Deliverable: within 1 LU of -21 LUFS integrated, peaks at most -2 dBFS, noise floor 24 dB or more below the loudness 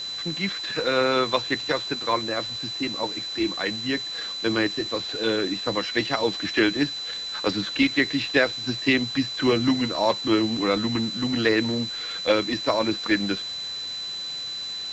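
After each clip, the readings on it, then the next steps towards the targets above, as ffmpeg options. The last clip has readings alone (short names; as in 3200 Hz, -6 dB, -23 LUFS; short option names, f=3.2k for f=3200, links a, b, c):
steady tone 4000 Hz; tone level -30 dBFS; noise floor -33 dBFS; noise floor target -49 dBFS; loudness -24.5 LUFS; peak -7.5 dBFS; loudness target -21.0 LUFS
-> -af "bandreject=f=4k:w=30"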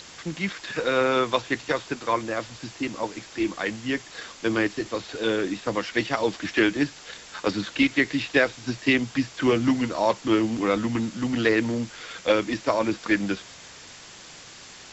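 steady tone none; noise floor -45 dBFS; noise floor target -50 dBFS
-> -af "afftdn=nr=6:nf=-45"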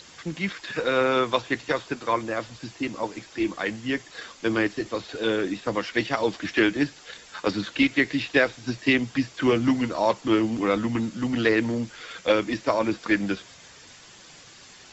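noise floor -49 dBFS; noise floor target -50 dBFS
-> -af "afftdn=nr=6:nf=-49"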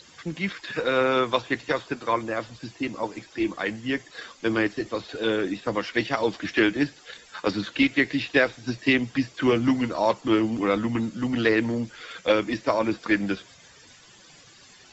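noise floor -52 dBFS; loudness -25.5 LUFS; peak -8.0 dBFS; loudness target -21.0 LUFS
-> -af "volume=4.5dB"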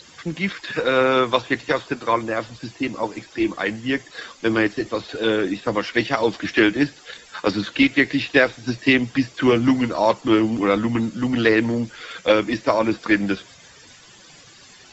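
loudness -21.0 LUFS; peak -3.5 dBFS; noise floor -48 dBFS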